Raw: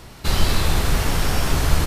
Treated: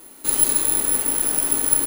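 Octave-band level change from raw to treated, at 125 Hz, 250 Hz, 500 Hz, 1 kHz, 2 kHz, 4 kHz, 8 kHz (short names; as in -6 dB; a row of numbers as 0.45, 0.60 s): under -20 dB, -5.0 dB, -5.5 dB, -8.0 dB, -8.5 dB, -8.5 dB, +12.5 dB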